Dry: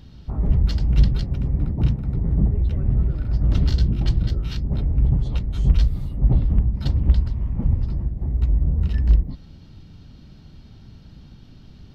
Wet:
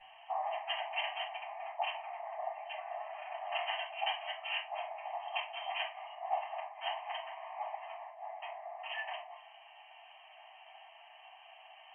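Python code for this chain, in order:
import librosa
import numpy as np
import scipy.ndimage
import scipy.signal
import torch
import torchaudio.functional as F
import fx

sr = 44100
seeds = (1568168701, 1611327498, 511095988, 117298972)

y = fx.brickwall_bandpass(x, sr, low_hz=620.0, high_hz=3200.0)
y = fx.fixed_phaser(y, sr, hz=1400.0, stages=6)
y = fx.room_shoebox(y, sr, seeds[0], volume_m3=230.0, walls='furnished', distance_m=6.6)
y = F.gain(torch.from_numpy(y), -3.0).numpy()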